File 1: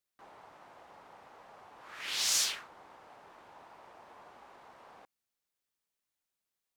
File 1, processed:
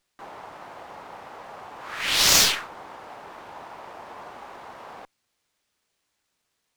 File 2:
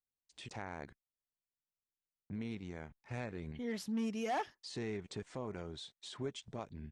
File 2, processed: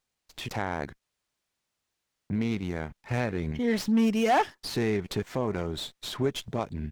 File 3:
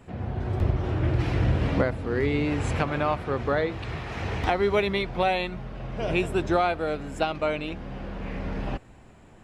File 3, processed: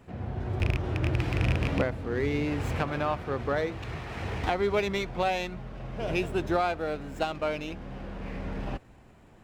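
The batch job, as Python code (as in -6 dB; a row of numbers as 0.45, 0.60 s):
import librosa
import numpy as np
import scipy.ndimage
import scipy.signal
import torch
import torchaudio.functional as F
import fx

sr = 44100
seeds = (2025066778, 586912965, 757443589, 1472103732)

y = fx.rattle_buzz(x, sr, strikes_db=-20.0, level_db=-15.0)
y = fx.running_max(y, sr, window=3)
y = y * 10.0 ** (-30 / 20.0) / np.sqrt(np.mean(np.square(y)))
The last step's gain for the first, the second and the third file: +13.5, +13.0, -3.5 dB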